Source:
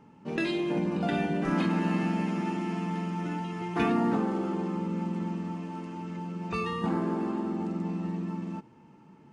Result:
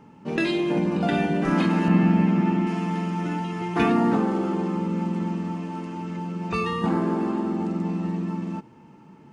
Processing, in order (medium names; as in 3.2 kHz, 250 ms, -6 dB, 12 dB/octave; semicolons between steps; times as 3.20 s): 1.88–2.67 s: tone controls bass +7 dB, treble -11 dB; trim +5.5 dB